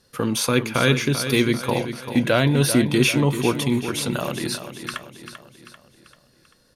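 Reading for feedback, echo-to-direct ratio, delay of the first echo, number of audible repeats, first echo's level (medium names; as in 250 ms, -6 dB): 49%, -9.0 dB, 391 ms, 5, -10.0 dB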